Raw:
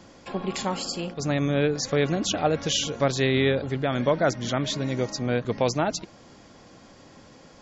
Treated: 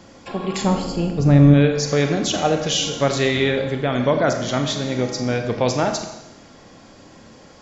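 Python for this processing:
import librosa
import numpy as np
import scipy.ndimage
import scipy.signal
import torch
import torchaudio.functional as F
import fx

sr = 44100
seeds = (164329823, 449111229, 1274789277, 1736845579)

y = fx.tilt_eq(x, sr, slope=-3.5, at=(0.64, 1.54))
y = fx.rev_schroeder(y, sr, rt60_s=0.94, comb_ms=28, drr_db=5.0)
y = y * 10.0 ** (3.5 / 20.0)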